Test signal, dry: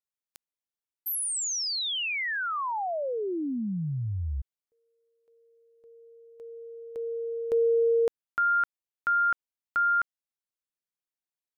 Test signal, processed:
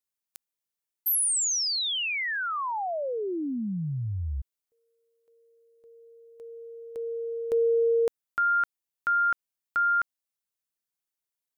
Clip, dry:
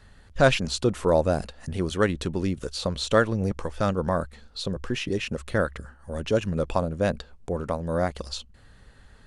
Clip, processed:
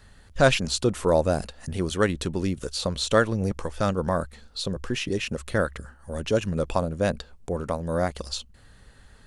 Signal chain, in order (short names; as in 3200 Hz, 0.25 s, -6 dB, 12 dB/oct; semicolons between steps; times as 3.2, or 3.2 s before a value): high shelf 6200 Hz +7 dB